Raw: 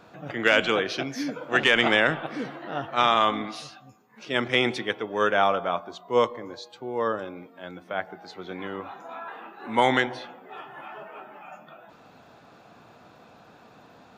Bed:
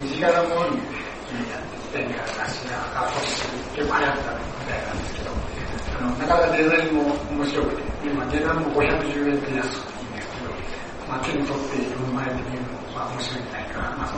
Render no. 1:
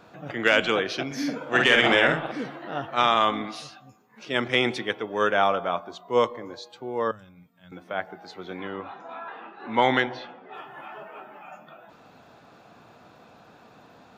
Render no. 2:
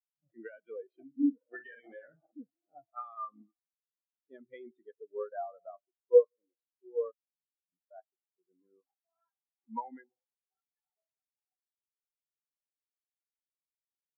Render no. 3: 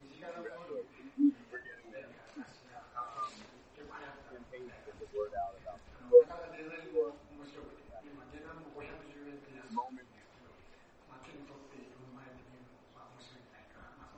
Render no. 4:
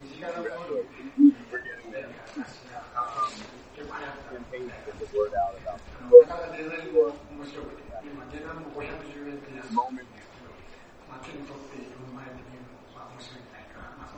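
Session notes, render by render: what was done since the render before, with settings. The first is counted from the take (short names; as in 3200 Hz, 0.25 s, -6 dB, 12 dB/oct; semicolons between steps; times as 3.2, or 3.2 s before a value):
1.06–2.32 doubler 49 ms -3 dB; 7.11–7.72 EQ curve 160 Hz 0 dB, 340 Hz -25 dB, 880 Hz -18 dB, 1900 Hz -13 dB, 4700 Hz -9 dB, 8400 Hz -2 dB; 8.6–10.54 LPF 5500 Hz 24 dB/oct
compressor 20:1, threshold -22 dBFS, peak gain reduction 10 dB; spectral expander 4:1
add bed -28 dB
gain +11.5 dB; limiter -1 dBFS, peak gain reduction 1.5 dB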